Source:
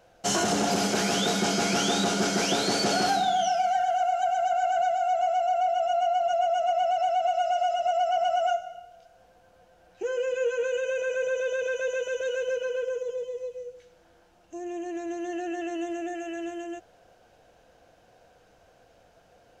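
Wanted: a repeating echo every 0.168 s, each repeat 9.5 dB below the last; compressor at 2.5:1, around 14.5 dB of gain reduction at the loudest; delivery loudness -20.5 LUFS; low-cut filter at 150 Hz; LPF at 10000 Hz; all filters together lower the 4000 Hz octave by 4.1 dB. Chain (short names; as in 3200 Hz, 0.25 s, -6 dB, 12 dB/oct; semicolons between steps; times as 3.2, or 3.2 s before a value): HPF 150 Hz; LPF 10000 Hz; bell 4000 Hz -5.5 dB; compressor 2.5:1, threshold -45 dBFS; feedback echo 0.168 s, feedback 33%, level -9.5 dB; gain +19.5 dB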